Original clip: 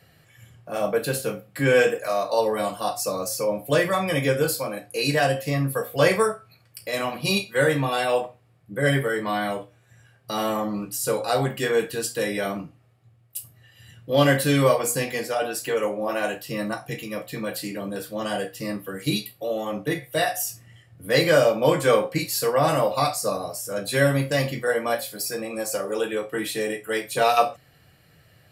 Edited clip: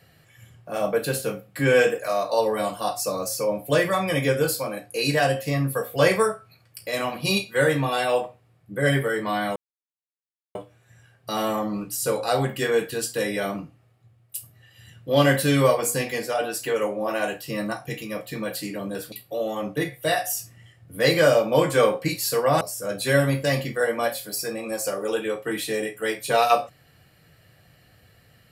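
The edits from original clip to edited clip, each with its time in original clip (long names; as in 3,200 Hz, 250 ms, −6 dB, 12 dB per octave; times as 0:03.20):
0:09.56: splice in silence 0.99 s
0:18.13–0:19.22: remove
0:22.71–0:23.48: remove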